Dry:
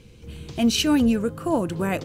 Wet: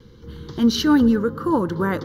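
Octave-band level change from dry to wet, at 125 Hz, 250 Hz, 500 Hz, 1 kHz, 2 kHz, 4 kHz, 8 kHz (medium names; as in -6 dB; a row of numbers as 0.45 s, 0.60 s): +2.0 dB, +3.5 dB, +2.5 dB, +4.5 dB, +2.5 dB, -1.5 dB, -5.0 dB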